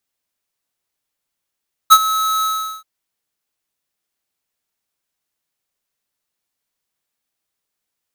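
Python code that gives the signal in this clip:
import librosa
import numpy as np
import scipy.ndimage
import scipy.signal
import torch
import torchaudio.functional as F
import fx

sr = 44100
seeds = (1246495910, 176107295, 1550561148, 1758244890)

y = fx.adsr_tone(sr, wave='square', hz=1290.0, attack_ms=24.0, decay_ms=54.0, sustain_db=-14.5, held_s=0.53, release_ms=401.0, level_db=-3.5)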